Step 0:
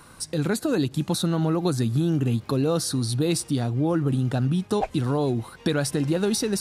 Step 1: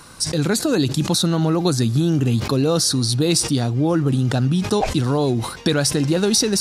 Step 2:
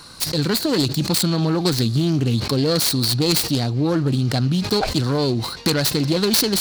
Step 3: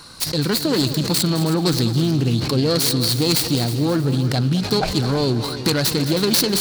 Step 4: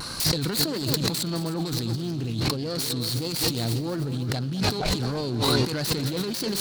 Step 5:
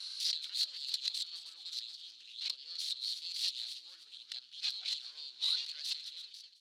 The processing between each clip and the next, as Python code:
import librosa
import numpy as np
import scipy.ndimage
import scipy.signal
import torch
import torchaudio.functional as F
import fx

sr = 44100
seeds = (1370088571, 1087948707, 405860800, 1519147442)

y1 = fx.peak_eq(x, sr, hz=5500.0, db=7.5, octaves=1.2)
y1 = fx.sustainer(y1, sr, db_per_s=85.0)
y1 = y1 * librosa.db_to_amplitude(4.5)
y2 = fx.self_delay(y1, sr, depth_ms=0.31)
y2 = fx.peak_eq(y2, sr, hz=4300.0, db=13.0, octaves=0.34)
y2 = y2 * librosa.db_to_amplitude(-1.0)
y3 = fx.echo_heads(y2, sr, ms=106, heads='second and third', feedback_pct=44, wet_db=-13)
y4 = fx.over_compress(y3, sr, threshold_db=-27.0, ratio=-1.0)
y4 = fx.vibrato(y4, sr, rate_hz=1.6, depth_cents=52.0)
y5 = fx.fade_out_tail(y4, sr, length_s=0.71)
y5 = fx.ladder_bandpass(y5, sr, hz=4000.0, resonance_pct=55)